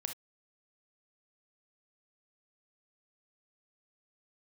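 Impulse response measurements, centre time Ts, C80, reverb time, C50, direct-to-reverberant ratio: 12 ms, 34.0 dB, no single decay rate, 8.5 dB, 5.5 dB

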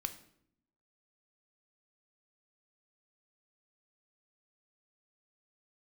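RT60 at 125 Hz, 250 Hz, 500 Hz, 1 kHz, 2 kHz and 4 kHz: 1.0 s, 1.0 s, 0.75 s, 0.60 s, 0.55 s, 0.50 s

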